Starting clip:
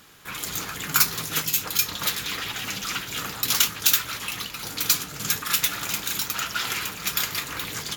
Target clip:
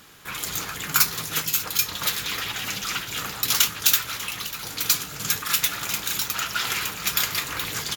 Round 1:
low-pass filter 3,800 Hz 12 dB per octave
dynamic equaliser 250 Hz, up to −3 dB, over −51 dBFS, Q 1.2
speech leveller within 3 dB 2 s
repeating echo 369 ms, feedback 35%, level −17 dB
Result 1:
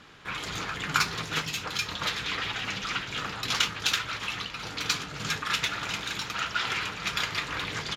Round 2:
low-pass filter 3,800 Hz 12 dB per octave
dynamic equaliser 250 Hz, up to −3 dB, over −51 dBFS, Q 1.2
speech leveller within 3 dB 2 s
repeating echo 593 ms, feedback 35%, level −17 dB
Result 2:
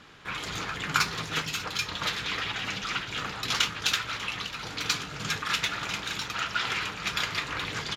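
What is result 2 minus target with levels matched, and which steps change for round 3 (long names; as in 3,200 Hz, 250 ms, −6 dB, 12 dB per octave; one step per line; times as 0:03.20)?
4,000 Hz band +2.5 dB
remove: low-pass filter 3,800 Hz 12 dB per octave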